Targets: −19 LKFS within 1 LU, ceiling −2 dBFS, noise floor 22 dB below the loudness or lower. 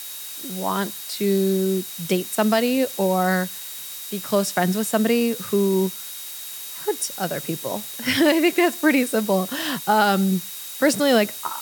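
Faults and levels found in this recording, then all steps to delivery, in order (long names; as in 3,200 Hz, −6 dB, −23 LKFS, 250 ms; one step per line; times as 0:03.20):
interfering tone 3,800 Hz; level of the tone −42 dBFS; background noise floor −35 dBFS; target noise floor −44 dBFS; integrated loudness −22.0 LKFS; sample peak −5.5 dBFS; target loudness −19.0 LKFS
→ notch filter 3,800 Hz, Q 30
noise reduction from a noise print 9 dB
level +3 dB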